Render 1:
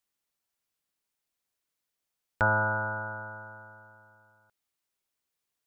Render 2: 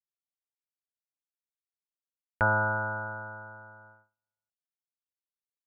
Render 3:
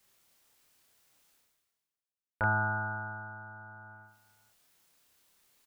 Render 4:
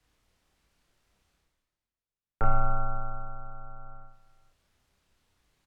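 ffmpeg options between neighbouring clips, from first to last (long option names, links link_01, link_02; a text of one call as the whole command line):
ffmpeg -i in.wav -af "agate=range=-34dB:threshold=-54dB:ratio=16:detection=peak,lowpass=frequency=2300:width=0.5412,lowpass=frequency=2300:width=1.3066" out.wav
ffmpeg -i in.wav -filter_complex "[0:a]areverse,acompressor=mode=upward:threshold=-39dB:ratio=2.5,areverse,asplit=2[link_01][link_02];[link_02]adelay=29,volume=-2dB[link_03];[link_01][link_03]amix=inputs=2:normalize=0,volume=-6dB" out.wav
ffmpeg -i in.wav -af "afreqshift=-90,aemphasis=mode=reproduction:type=bsi,acontrast=62,volume=-6dB" out.wav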